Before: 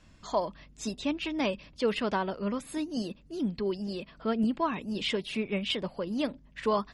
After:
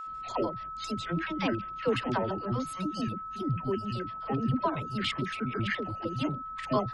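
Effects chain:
pitch shifter gated in a rhythm −9 semitones, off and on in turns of 70 ms
notch filter 5,900 Hz, Q 26
all-pass dispersion lows, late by 66 ms, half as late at 520 Hz
steady tone 1,300 Hz −37 dBFS

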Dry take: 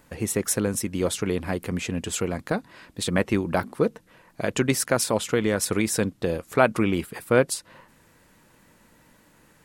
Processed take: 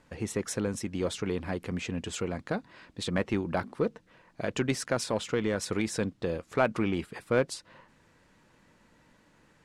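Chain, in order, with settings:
low-pass filter 6,200 Hz 12 dB per octave
in parallel at −5 dB: soft clipping −20.5 dBFS, distortion −8 dB
on the sum: level −8.5 dB

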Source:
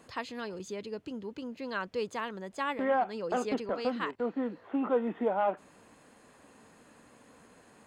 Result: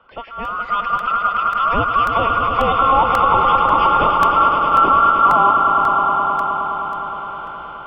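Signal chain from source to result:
frequency inversion band by band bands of 2,000 Hz
automatic gain control gain up to 15 dB
brickwall limiter −12.5 dBFS, peak gain reduction 8.5 dB
echo that builds up and dies away 104 ms, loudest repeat 5, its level −8 dB
single-sideband voice off tune −360 Hz 300–3,500 Hz
regular buffer underruns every 0.54 s, samples 64, repeat, from 0:00.45
level +4 dB

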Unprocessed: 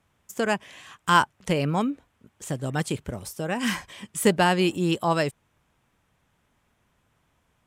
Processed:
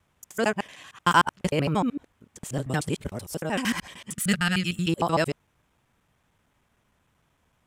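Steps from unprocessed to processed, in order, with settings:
reversed piece by piece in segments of 76 ms
gain on a spectral selection 0:04.15–0:04.88, 230–1,200 Hz −16 dB

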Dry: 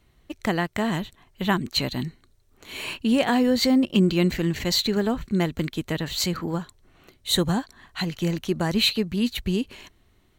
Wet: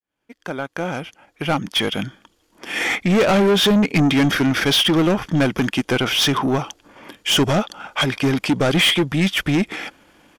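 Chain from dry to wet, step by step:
fade in at the beginning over 3.42 s
parametric band 420 Hz +7 dB 2.5 octaves
pitch shifter −4 semitones
mid-hump overdrive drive 26 dB, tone 6,800 Hz, clips at −3.5 dBFS
level −4.5 dB

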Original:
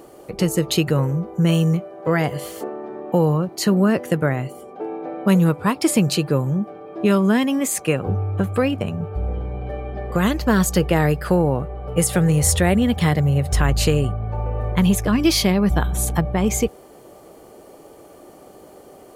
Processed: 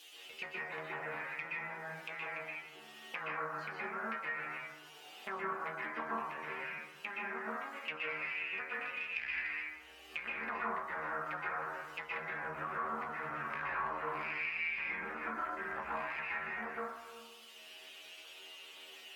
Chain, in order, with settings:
loose part that buzzes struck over −23 dBFS, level −10 dBFS
mains-hum notches 50/100/150 Hz
treble cut that deepens with the level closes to 770 Hz, closed at −13.5 dBFS
low-shelf EQ 66 Hz +11.5 dB
harmonic generator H 3 −11 dB, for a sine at −4 dBFS
background noise violet −44 dBFS
stiff-string resonator 75 Hz, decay 0.49 s, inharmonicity 0.002
tube saturation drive 32 dB, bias 0.7
envelope filter 360–3,200 Hz, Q 5.6, down, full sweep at −27.5 dBFS
convolution reverb RT60 1.0 s, pre-delay 112 ms, DRR −7 dB
multiband upward and downward compressor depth 70%
level +13 dB

